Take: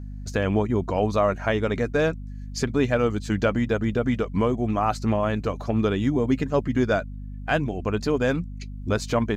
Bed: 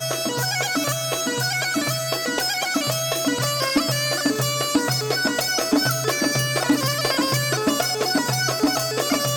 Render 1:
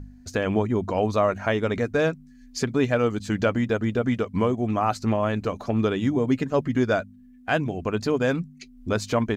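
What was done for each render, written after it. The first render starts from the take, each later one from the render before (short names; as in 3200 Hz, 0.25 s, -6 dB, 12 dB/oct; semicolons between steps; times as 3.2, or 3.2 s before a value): de-hum 50 Hz, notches 4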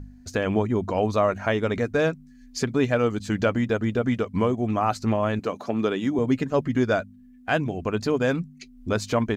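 5.39–6.19 HPF 190 Hz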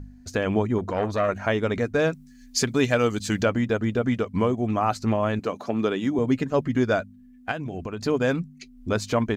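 0.78–1.29 core saturation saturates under 800 Hz; 2.12–3.43 high shelf 2700 Hz +10 dB; 7.51–8.05 compressor, threshold -27 dBFS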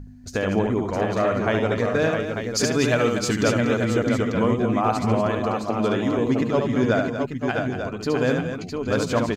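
tapped delay 72/150/218/240/661/893 ms -5/-19/-19.5/-9.5/-5.5/-8 dB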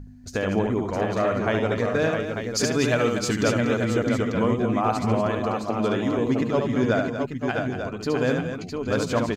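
gain -1.5 dB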